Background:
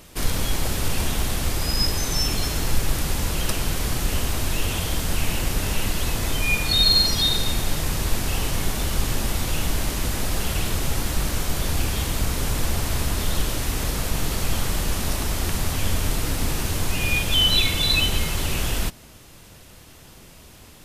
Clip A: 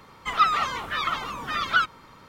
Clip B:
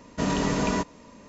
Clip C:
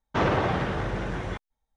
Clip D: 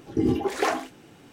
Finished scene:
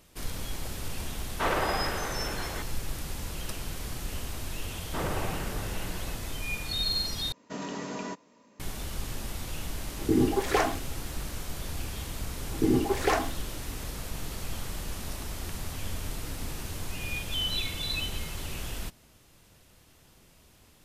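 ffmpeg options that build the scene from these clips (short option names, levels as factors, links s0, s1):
-filter_complex "[3:a]asplit=2[s0][s1];[4:a]asplit=2[s2][s3];[0:a]volume=0.251[s4];[s0]highpass=f=650:p=1[s5];[2:a]highpass=190[s6];[s4]asplit=2[s7][s8];[s7]atrim=end=7.324[s9];[s6]atrim=end=1.28,asetpts=PTS-STARTPTS,volume=0.316[s10];[s8]atrim=start=8.596[s11];[s5]atrim=end=1.76,asetpts=PTS-STARTPTS,volume=0.944,afade=t=in:d=0.004:c=hsin,afade=t=out:st=1.756:d=0.004:c=hsin,adelay=1250[s12];[s1]atrim=end=1.76,asetpts=PTS-STARTPTS,volume=0.335,afade=t=in:d=0.004:c=hsin,afade=t=out:st=1.756:d=0.004:c=hsin,adelay=4790[s13];[s2]atrim=end=1.32,asetpts=PTS-STARTPTS,volume=0.891,afade=t=in:d=0.004:c=hsin,afade=t=out:st=1.316:d=0.004:c=hsin,adelay=9920[s14];[s3]atrim=end=1.32,asetpts=PTS-STARTPTS,volume=0.841,afade=t=in:d=0.004:c=hsin,afade=t=out:st=1.316:d=0.004:c=hsin,adelay=12450[s15];[s9][s10]acrossfade=d=0.004:c1=hsin:c2=hsin[s16];[s16][s11]acrossfade=d=0.004:c1=hsin:c2=hsin[s17];[s17][s12][s13][s14][s15]amix=inputs=5:normalize=0"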